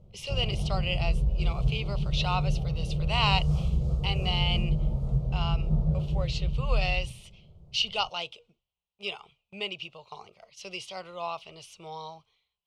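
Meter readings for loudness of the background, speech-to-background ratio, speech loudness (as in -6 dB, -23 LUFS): -30.0 LUFS, -3.0 dB, -33.0 LUFS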